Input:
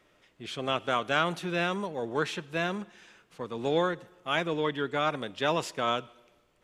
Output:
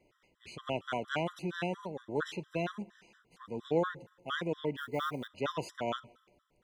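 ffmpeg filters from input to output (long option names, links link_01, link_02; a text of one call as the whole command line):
ffmpeg -i in.wav -filter_complex "[0:a]asettb=1/sr,asplit=3[link_01][link_02][link_03];[link_01]atrim=end=4.774[link_04];[link_02]atrim=start=4.77:end=5.28,asetpts=PTS-STARTPTS,afade=type=in:duration=0.004:curve=qsin,afade=type=out:start_time=0.506:duration=0.004:curve=qsin,acrusher=bits=5:mode=log:mix=0:aa=0.000001[link_05];[link_03]atrim=start=5.276[link_06];[link_04][link_05]acrossfade=duration=0.004:curve1=hsin:curve2=qsin[link_07];[link_07][link_06]acrossfade=duration=0.004:curve1=qsin:curve2=hsin,tiltshelf=frequency=660:gain=3,afftfilt=real='re*gt(sin(2*PI*4.3*pts/sr)*(1-2*mod(floor(b*sr/1024/1000),2)),0)':imag='im*gt(sin(2*PI*4.3*pts/sr)*(1-2*mod(floor(b*sr/1024/1000),2)),0)':win_size=1024:overlap=0.75,volume=-3dB" out.wav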